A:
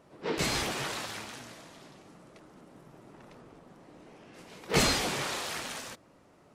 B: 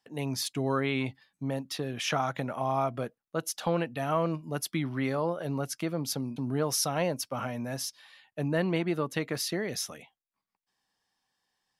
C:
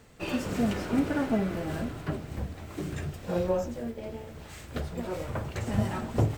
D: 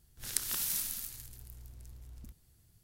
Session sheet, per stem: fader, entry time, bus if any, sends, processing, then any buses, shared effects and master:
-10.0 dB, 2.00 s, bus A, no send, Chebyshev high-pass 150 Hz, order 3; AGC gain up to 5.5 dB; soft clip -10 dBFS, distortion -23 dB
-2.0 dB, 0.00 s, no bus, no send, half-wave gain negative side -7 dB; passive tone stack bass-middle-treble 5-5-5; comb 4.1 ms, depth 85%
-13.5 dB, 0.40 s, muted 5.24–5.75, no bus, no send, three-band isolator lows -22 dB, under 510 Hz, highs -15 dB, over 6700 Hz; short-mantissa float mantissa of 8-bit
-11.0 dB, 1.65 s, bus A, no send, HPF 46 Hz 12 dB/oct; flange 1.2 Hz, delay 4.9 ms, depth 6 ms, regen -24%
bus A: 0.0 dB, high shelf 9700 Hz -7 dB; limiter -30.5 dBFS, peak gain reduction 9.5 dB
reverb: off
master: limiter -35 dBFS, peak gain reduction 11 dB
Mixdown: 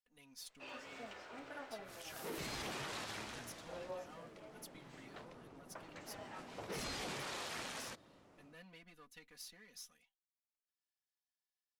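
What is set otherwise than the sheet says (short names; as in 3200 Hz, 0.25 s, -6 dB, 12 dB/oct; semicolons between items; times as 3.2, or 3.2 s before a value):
stem A: missing Chebyshev high-pass 150 Hz, order 3; stem B -2.0 dB -> -12.0 dB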